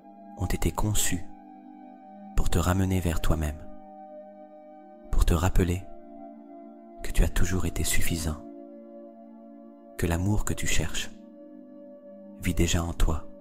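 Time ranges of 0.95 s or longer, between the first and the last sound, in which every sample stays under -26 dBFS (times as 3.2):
1.16–2.38
3.5–5.13
5.77–7.05
8.33–9.99
11.03–12.45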